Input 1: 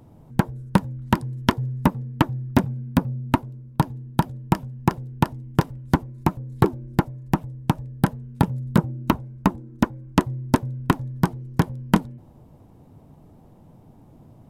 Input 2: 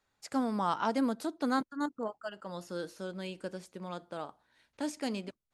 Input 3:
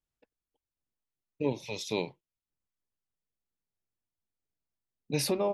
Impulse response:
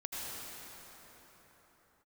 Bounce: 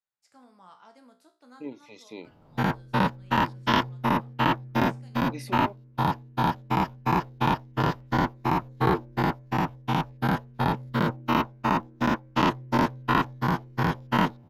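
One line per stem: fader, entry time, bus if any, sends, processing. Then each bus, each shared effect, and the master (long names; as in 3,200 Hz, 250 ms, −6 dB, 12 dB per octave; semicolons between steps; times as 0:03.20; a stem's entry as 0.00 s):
−4.5 dB, 2.25 s, no send, every bin's largest magnitude spread in time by 120 ms; moving average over 5 samples
−12.5 dB, 0.00 s, no send, parametric band 150 Hz +7 dB; tuned comb filter 62 Hz, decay 0.37 s, harmonics all, mix 80%
−13.5 dB, 0.20 s, no send, hollow resonant body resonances 270/2,000 Hz, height 17 dB, ringing for 25 ms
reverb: not used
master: low-shelf EQ 430 Hz −10.5 dB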